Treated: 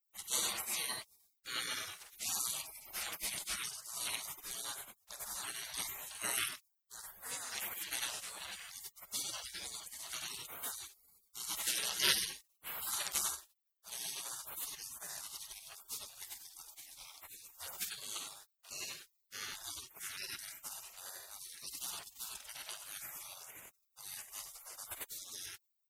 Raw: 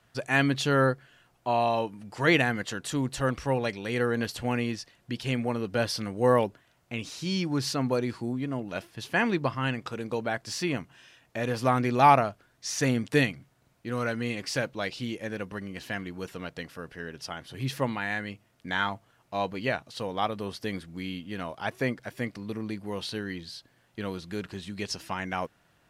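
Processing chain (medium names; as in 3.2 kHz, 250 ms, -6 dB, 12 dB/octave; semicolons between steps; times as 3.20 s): tilt EQ +2.5 dB/octave; multi-tap echo 48/53/93/97 ms -10.5/-19.5/-7/-5 dB; spectral gate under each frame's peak -30 dB weak; trim +7.5 dB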